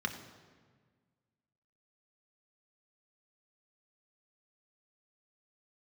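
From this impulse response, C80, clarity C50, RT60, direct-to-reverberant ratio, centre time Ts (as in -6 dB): 10.5 dB, 9.5 dB, 1.6 s, 4.0 dB, 19 ms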